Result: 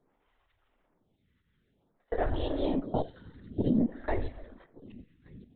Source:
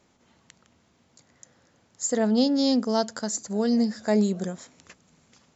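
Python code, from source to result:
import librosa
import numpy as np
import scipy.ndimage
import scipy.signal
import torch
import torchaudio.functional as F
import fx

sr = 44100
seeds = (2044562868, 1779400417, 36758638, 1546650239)

p1 = fx.peak_eq(x, sr, hz=120.0, db=8.0, octaves=0.63)
p2 = fx.level_steps(p1, sr, step_db=23)
p3 = p2 + fx.echo_single(p2, sr, ms=1170, db=-23.0, dry=0)
p4 = fx.rev_gated(p3, sr, seeds[0], gate_ms=370, shape='falling', drr_db=9.5)
p5 = fx.lpc_vocoder(p4, sr, seeds[1], excitation='whisper', order=16)
y = fx.stagger_phaser(p5, sr, hz=0.53)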